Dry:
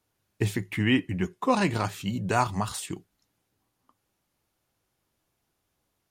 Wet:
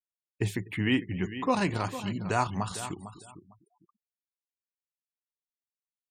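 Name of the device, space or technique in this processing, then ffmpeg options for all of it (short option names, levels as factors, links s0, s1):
ducked delay: -filter_complex "[0:a]asplit=3[s0][s1][s2];[s1]adelay=249,volume=0.376[s3];[s2]apad=whole_len=280091[s4];[s3][s4]sidechaincompress=threshold=0.0158:ratio=8:attack=5.5:release=684[s5];[s0][s5]amix=inputs=2:normalize=0,asettb=1/sr,asplit=3[s6][s7][s8];[s6]atrim=end=2.304[s9];[s7]atrim=start=2.3:end=2.79,asetpts=PTS-STARTPTS,afade=t=in:d=0.004:c=qsin,afade=t=out:st=0.486:d=0.004:c=qsin,lowpass=11000[s10];[s8]atrim=start=2.786[s11];[s9][s10]acrossfade=d=0.004:c1=hsin:c2=qsin[s12];[s12][s11]acrossfade=d=0.004:c1=qsin:c2=hsin,aecho=1:1:453|906|1359:0.237|0.0498|0.0105,afftfilt=real='re*gte(hypot(re,im),0.00562)':imag='im*gte(hypot(re,im),0.00562)':win_size=1024:overlap=0.75,volume=0.708"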